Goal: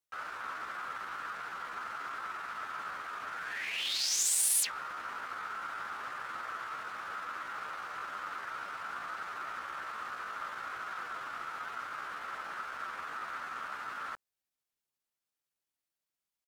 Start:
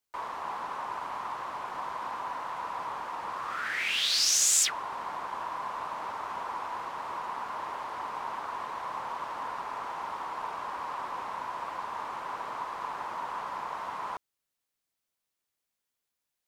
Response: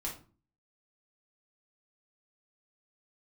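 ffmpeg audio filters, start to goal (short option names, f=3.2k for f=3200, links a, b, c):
-af "asetrate=58866,aresample=44100,atempo=0.749154,volume=-4dB"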